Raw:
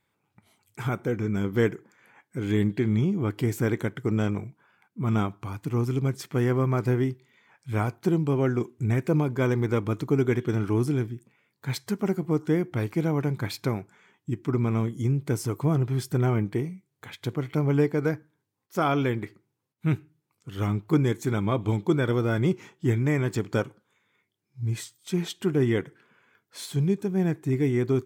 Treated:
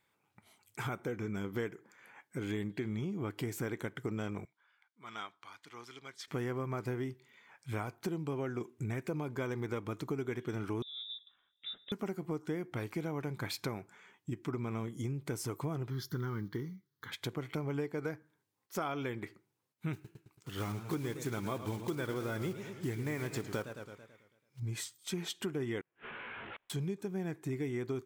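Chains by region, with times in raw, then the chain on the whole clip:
4.45–6.28 s: band-pass filter 2.9 kHz, Q 1.4 + peaking EQ 2.6 kHz -12 dB 0.26 oct
10.82–11.92 s: peaking EQ 1.3 kHz -13 dB 2.2 oct + compression, threshold -41 dBFS + frequency inversion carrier 3.7 kHz
15.90–17.12 s: block-companded coder 7-bit + static phaser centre 2.5 kHz, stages 6
19.93–24.61 s: block-companded coder 5-bit + modulated delay 110 ms, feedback 51%, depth 136 cents, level -12 dB
25.81–26.70 s: one-bit delta coder 16 kbps, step -39.5 dBFS + doubling 18 ms -5 dB + inverted gate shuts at -38 dBFS, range -37 dB
whole clip: bass shelf 310 Hz -7.5 dB; compression 4:1, threshold -35 dBFS

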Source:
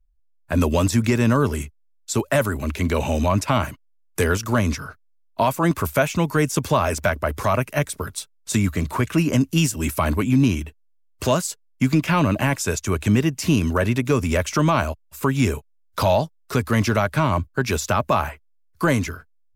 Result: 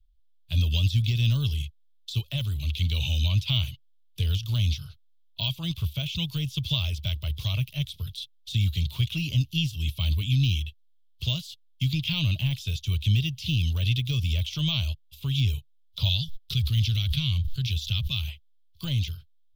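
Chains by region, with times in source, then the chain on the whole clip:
16.09–18.28 s: gate -55 dBFS, range -38 dB + peaking EQ 690 Hz -14.5 dB 1.6 oct + swell ahead of each attack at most 38 dB/s
whole clip: peaking EQ 230 Hz -7.5 dB 0.79 oct; de-esser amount 80%; FFT filter 130 Hz 0 dB, 350 Hz -25 dB, 1.7 kHz -28 dB, 3.3 kHz +14 dB, 7.9 kHz -13 dB, 13 kHz -3 dB; trim +1 dB

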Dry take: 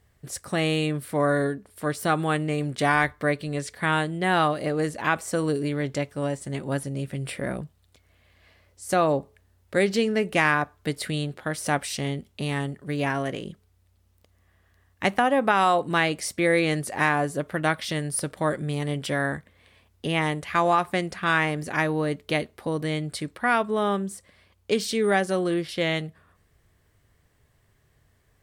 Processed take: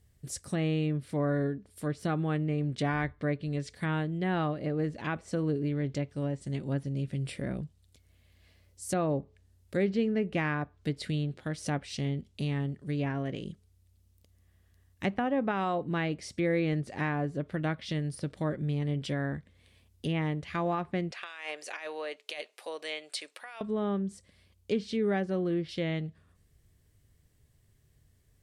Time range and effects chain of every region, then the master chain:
21.11–23.61 s: high-pass 560 Hz 24 dB/octave + peaking EQ 2.6 kHz +6 dB 0.3 oct + compressor with a negative ratio -30 dBFS
whole clip: low-pass that closes with the level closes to 2.1 kHz, closed at -22 dBFS; peaking EQ 1.1 kHz -12.5 dB 2.8 oct

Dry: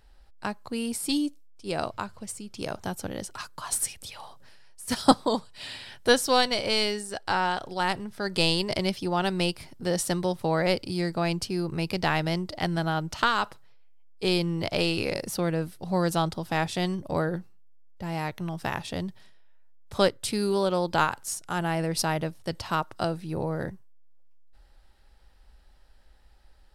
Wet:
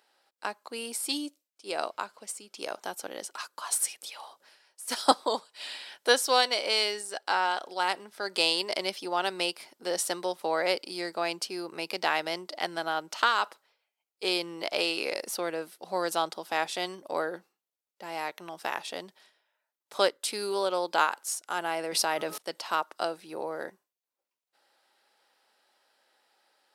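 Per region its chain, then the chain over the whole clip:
21.92–22.38 s: de-hum 425 Hz, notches 3 + level flattener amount 100%
whole clip: Bessel high-pass 480 Hz, order 4; band-stop 1.8 kHz, Q 29

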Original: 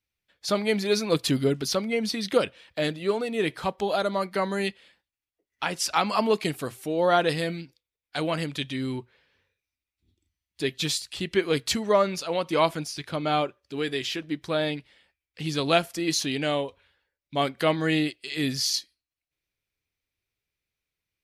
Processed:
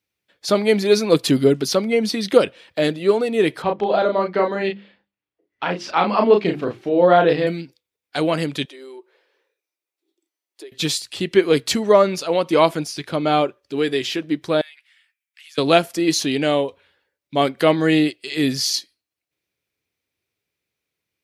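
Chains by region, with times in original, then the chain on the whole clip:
3.62–7.47 s: distance through air 240 m + hum notches 50/100/150/200/250/300/350/400 Hz + doubling 34 ms -4 dB
8.65–10.72 s: elliptic high-pass 330 Hz + peaking EQ 2.7 kHz -5 dB 1.9 oct + compression 5:1, threshold -45 dBFS
14.61–15.58 s: high-pass 1.5 kHz 24 dB/octave + compression 2.5:1, threshold -47 dBFS + peaking EQ 4.4 kHz -6.5 dB 0.91 oct
whole clip: high-pass 100 Hz; peaking EQ 390 Hz +5 dB 1.7 oct; trim +4.5 dB

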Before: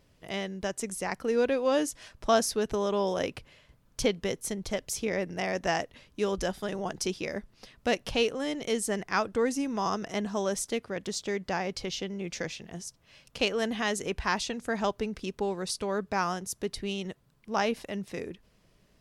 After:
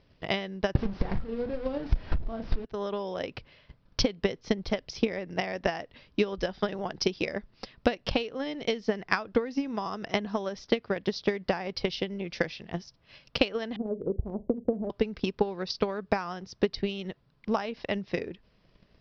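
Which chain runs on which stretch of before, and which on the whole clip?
0.75–2.65 s: one-bit delta coder 32 kbps, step -24.5 dBFS + tilt EQ -4.5 dB/octave + doubling 35 ms -7.5 dB
13.76–14.90 s: steep low-pass 560 Hz + flutter echo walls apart 7 m, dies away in 0.22 s
whole clip: steep low-pass 5.4 kHz 72 dB/octave; compression 16:1, threshold -30 dBFS; transient shaper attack +12 dB, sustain 0 dB

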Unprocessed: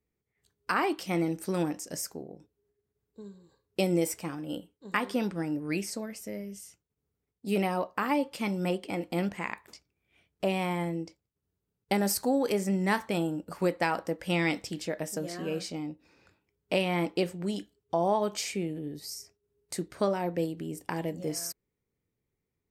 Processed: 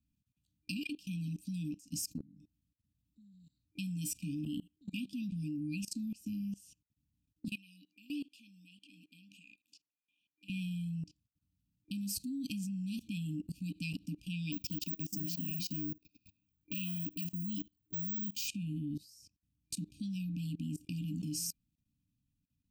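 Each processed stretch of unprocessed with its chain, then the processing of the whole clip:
7.48–10.50 s: high-pass 560 Hz + treble shelf 3 kHz -7 dB
14.52–18.48 s: Chebyshev low-pass 7 kHz, order 3 + careless resampling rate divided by 2×, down filtered, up zero stuff
whole clip: treble shelf 2.5 kHz -7 dB; FFT band-reject 310–2400 Hz; level held to a coarse grid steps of 22 dB; trim +6.5 dB

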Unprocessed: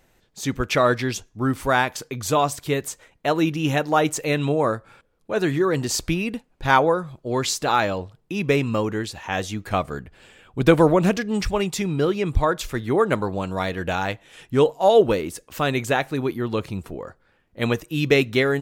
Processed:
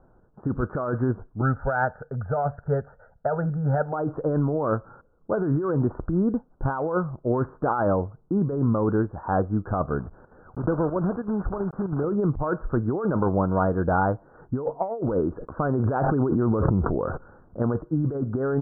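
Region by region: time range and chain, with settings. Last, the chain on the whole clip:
1.41–3.93 s: peaking EQ 2 kHz +9.5 dB + static phaser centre 1.6 kHz, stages 8
9.99–12.04 s: block-companded coder 3-bit + square tremolo 3.1 Hz, depth 65%, duty 80% + compression 2.5:1, threshold -30 dBFS
15.29–17.62 s: low-pass 6.6 kHz + gate -55 dBFS, range -30 dB + decay stretcher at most 22 dB/s
whole clip: steep low-pass 1.5 kHz 96 dB/octave; bass shelf 450 Hz +2.5 dB; compressor with a negative ratio -23 dBFS, ratio -1

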